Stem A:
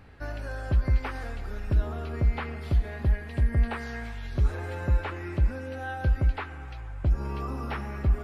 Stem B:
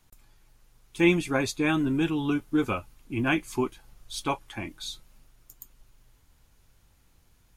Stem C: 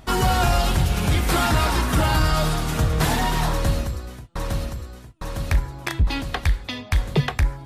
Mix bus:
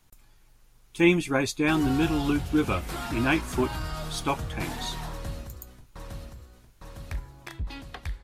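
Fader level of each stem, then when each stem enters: mute, +1.0 dB, -14.0 dB; mute, 0.00 s, 1.60 s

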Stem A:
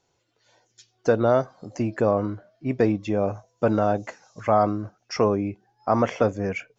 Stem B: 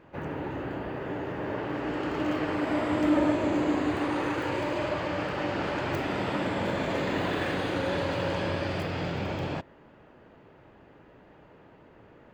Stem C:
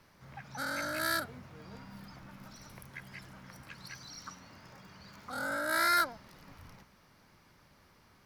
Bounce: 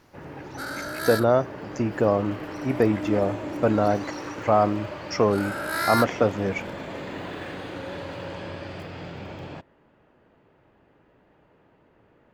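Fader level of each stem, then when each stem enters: 0.0 dB, -6.0 dB, +2.0 dB; 0.00 s, 0.00 s, 0.00 s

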